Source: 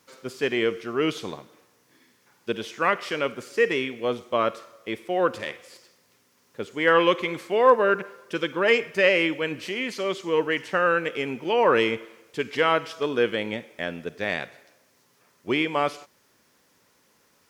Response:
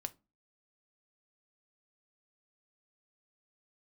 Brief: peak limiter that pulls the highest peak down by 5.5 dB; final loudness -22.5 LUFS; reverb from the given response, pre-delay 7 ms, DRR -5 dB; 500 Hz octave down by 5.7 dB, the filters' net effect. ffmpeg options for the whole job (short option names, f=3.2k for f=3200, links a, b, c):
-filter_complex "[0:a]equalizer=f=500:t=o:g=-6.5,alimiter=limit=-13.5dB:level=0:latency=1,asplit=2[a][b];[1:a]atrim=start_sample=2205,adelay=7[c];[b][c]afir=irnorm=-1:irlink=0,volume=7dB[d];[a][d]amix=inputs=2:normalize=0,volume=-0.5dB"